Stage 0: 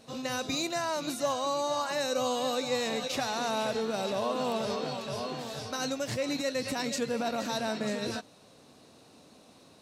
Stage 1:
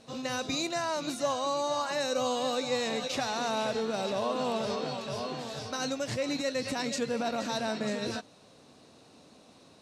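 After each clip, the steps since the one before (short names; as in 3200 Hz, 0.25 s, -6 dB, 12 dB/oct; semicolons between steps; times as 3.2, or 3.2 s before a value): LPF 9300 Hz 12 dB/oct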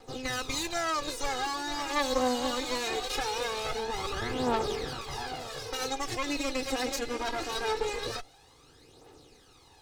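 minimum comb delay 2.4 ms; phaser 0.22 Hz, delay 3.9 ms, feedback 57%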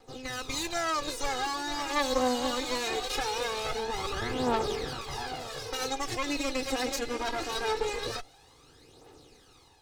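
AGC gain up to 5 dB; gain -4.5 dB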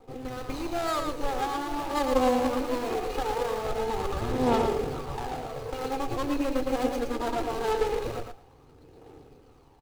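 median filter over 25 samples; on a send: feedback echo 0.113 s, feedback 15%, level -5.5 dB; on the sum: gain +4.5 dB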